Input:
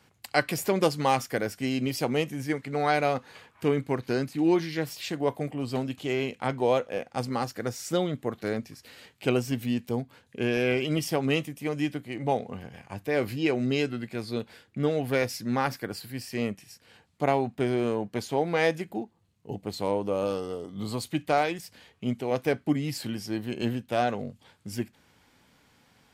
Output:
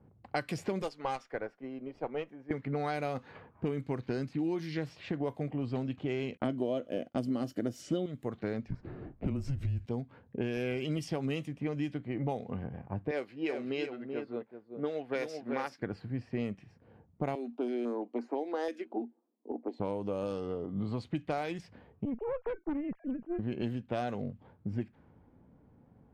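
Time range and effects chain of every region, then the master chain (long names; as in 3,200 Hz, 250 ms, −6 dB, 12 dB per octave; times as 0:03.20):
0:00.82–0:02.51: high-pass filter 480 Hz + tube saturation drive 19 dB, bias 0.35 + expander for the loud parts, over −39 dBFS
0:06.37–0:08.06: downward expander −45 dBFS + parametric band 830 Hz −12 dB 0.49 octaves + hollow resonant body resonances 290/620/3,000 Hz, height 15 dB, ringing for 20 ms
0:08.68–0:09.86: drawn EQ curve 110 Hz 0 dB, 280 Hz +13 dB, 3,300 Hz −1 dB + downward compressor, threshold −22 dBFS + frequency shifter −140 Hz
0:13.11–0:15.82: high-pass filter 360 Hz + single-tap delay 382 ms −6 dB + expander for the loud parts, over −47 dBFS
0:17.35–0:19.80: Chebyshev high-pass with heavy ripple 230 Hz, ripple 3 dB + notch on a step sequencer 6 Hz 870–3,400 Hz
0:22.05–0:23.39: three sine waves on the formant tracks + tube saturation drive 29 dB, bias 0.6 + high-frequency loss of the air 93 metres
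whole clip: low-pass that shuts in the quiet parts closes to 610 Hz, open at −21.5 dBFS; low-shelf EQ 360 Hz +6.5 dB; downward compressor 6 to 1, threshold −31 dBFS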